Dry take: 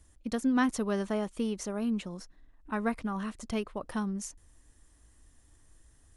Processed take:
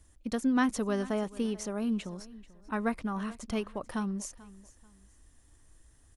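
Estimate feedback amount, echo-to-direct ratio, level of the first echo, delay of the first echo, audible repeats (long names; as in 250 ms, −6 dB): 29%, −19.0 dB, −19.5 dB, 438 ms, 2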